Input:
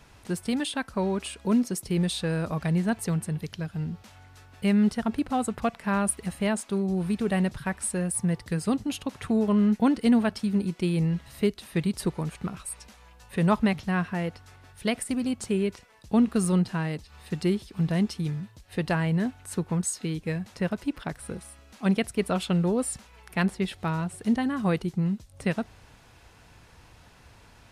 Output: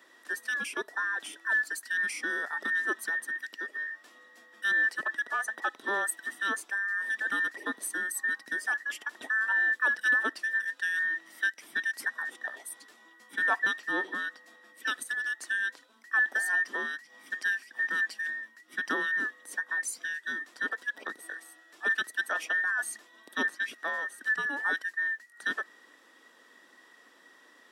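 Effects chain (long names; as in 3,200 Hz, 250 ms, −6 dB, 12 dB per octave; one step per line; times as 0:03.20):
frequency inversion band by band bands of 2,000 Hz
four-pole ladder high-pass 240 Hz, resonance 45%
level +3.5 dB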